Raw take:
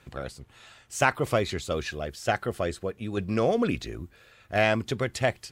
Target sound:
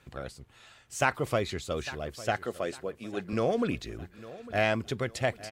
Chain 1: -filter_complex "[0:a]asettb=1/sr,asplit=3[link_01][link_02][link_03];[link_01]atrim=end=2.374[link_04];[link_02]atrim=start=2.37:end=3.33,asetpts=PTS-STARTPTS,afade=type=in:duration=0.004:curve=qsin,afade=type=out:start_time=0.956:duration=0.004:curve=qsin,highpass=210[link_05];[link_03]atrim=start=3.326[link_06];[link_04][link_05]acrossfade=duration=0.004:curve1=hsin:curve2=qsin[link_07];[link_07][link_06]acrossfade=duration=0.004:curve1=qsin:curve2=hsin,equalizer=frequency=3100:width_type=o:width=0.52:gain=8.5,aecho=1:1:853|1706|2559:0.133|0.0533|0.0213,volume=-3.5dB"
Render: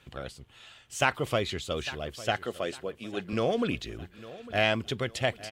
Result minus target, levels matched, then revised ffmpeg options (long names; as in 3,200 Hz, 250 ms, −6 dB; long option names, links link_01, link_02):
4,000 Hz band +5.5 dB
-filter_complex "[0:a]asettb=1/sr,asplit=3[link_01][link_02][link_03];[link_01]atrim=end=2.374[link_04];[link_02]atrim=start=2.37:end=3.33,asetpts=PTS-STARTPTS,afade=type=in:duration=0.004:curve=qsin,afade=type=out:start_time=0.956:duration=0.004:curve=qsin,highpass=210[link_05];[link_03]atrim=start=3.326[link_06];[link_04][link_05]acrossfade=duration=0.004:curve1=hsin:curve2=qsin[link_07];[link_07][link_06]acrossfade=duration=0.004:curve1=qsin:curve2=hsin,aecho=1:1:853|1706|2559:0.133|0.0533|0.0213,volume=-3.5dB"